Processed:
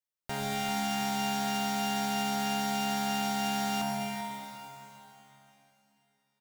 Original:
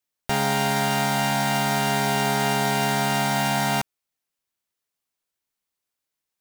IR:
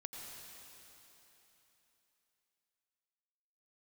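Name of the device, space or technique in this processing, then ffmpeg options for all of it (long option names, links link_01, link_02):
cave: -filter_complex "[0:a]aecho=1:1:394:0.251[link_01];[1:a]atrim=start_sample=2205[link_02];[link_01][link_02]afir=irnorm=-1:irlink=0,volume=-6.5dB"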